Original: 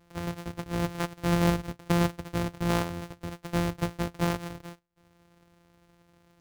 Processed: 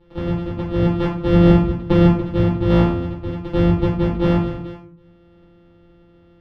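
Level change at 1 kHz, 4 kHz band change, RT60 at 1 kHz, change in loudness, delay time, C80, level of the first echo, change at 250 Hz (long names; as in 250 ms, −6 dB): +5.5 dB, +3.5 dB, 0.45 s, +12.0 dB, no echo audible, 11.5 dB, no echo audible, +13.0 dB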